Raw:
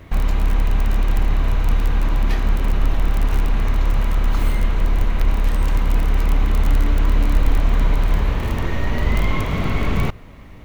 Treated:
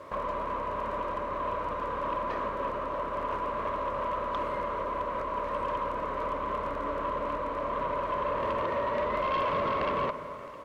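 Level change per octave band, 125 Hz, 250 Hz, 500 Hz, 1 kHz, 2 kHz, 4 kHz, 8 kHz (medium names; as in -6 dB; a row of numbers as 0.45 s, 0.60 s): -24.5 dB, -13.0 dB, +1.0 dB, +2.5 dB, -8.5 dB, -12.0 dB, no reading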